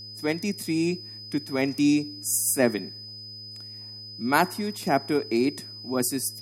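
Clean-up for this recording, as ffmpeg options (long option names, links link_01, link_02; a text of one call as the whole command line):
ffmpeg -i in.wav -af "bandreject=frequency=106.2:width_type=h:width=4,bandreject=frequency=212.4:width_type=h:width=4,bandreject=frequency=318.6:width_type=h:width=4,bandreject=frequency=424.8:width_type=h:width=4,bandreject=frequency=531:width_type=h:width=4,bandreject=frequency=5000:width=30" out.wav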